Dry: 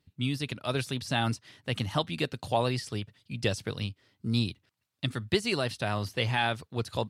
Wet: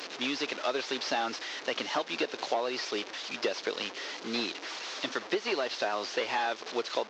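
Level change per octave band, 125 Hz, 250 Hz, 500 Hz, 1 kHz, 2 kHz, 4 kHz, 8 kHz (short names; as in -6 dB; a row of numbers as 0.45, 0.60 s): -27.0, -5.0, +0.5, +0.5, +0.5, +0.5, +1.0 dB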